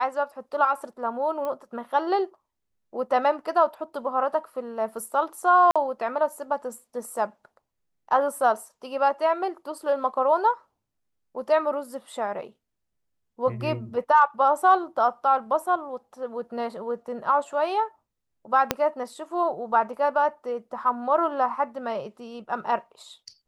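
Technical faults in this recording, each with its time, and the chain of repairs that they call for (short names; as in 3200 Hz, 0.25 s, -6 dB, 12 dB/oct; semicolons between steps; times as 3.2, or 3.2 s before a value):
1.45 pop -20 dBFS
5.71–5.76 gap 46 ms
18.71 pop -5 dBFS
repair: de-click; interpolate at 5.71, 46 ms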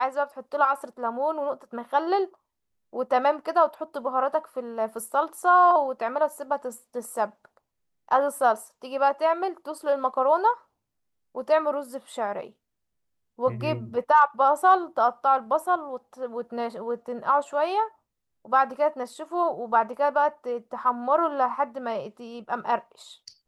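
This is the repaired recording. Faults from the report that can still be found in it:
18.71 pop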